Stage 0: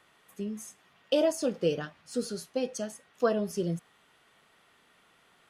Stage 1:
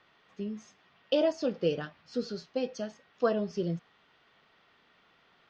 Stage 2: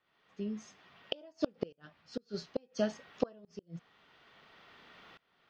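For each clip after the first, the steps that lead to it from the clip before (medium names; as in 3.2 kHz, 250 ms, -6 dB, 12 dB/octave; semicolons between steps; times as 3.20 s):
steep low-pass 5.4 kHz 36 dB/octave; trim -1 dB
inverted gate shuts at -22 dBFS, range -34 dB; tremolo saw up 0.58 Hz, depth 95%; trim +9 dB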